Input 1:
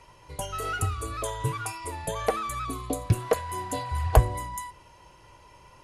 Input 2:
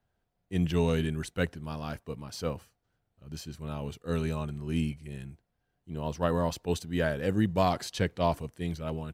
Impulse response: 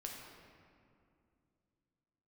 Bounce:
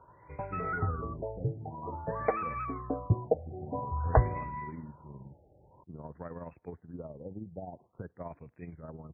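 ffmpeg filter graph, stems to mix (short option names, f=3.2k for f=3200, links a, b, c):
-filter_complex "[0:a]volume=-3dB[a];[1:a]acompressor=threshold=-39dB:ratio=3,tremolo=f=19:d=0.54,volume=-1.5dB[b];[a][b]amix=inputs=2:normalize=0,highpass=63,afftfilt=real='re*lt(b*sr/1024,830*pow(2700/830,0.5+0.5*sin(2*PI*0.5*pts/sr)))':imag='im*lt(b*sr/1024,830*pow(2700/830,0.5+0.5*sin(2*PI*0.5*pts/sr)))':win_size=1024:overlap=0.75"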